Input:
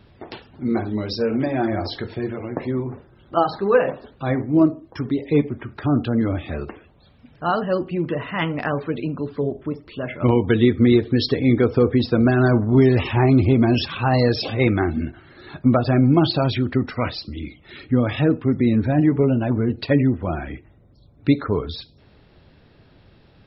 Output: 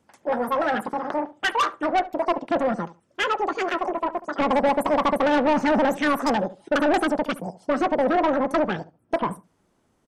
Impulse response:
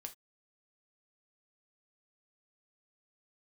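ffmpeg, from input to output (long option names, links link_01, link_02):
-filter_complex "[0:a]afwtdn=0.0708,equalizer=frequency=1700:width=5.3:gain=-7,aresample=16000,asoftclip=type=tanh:threshold=-17dB,aresample=44100,asetrate=102753,aresample=44100,asplit=2[link_01][link_02];[link_02]adelay=71,lowpass=frequency=1200:poles=1,volume=-15dB,asplit=2[link_03][link_04];[link_04]adelay=71,lowpass=frequency=1200:poles=1,volume=0.21[link_05];[link_01][link_03][link_05]amix=inputs=3:normalize=0,volume=1dB"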